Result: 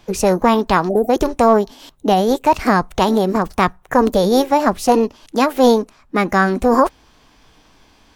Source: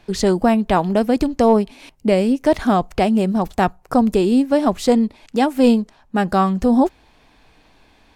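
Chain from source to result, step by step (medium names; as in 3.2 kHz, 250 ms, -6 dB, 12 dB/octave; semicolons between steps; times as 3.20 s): time-frequency box 0.89–1.10 s, 760–5600 Hz -29 dB; formant shift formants +5 st; trim +1.5 dB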